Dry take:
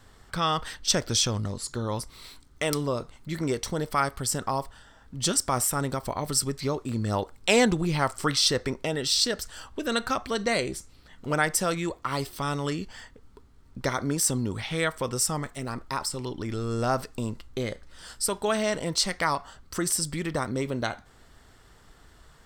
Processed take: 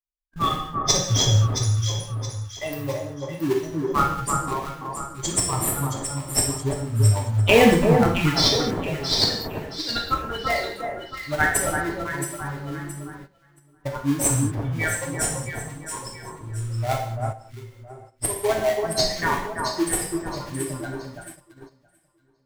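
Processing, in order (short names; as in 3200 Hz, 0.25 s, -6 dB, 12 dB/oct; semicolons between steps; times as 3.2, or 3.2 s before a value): per-bin expansion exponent 3; in parallel at -6 dB: sample-rate reducer 1400 Hz, jitter 20%; on the sum: echo with dull and thin repeats by turns 0.336 s, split 1600 Hz, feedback 59%, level -4 dB; non-linear reverb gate 0.25 s falling, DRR -0.5 dB; gate -47 dBFS, range -13 dB; 17.32–18.22 compressor 3:1, threshold -46 dBFS, peak gain reduction 11 dB; gain +6.5 dB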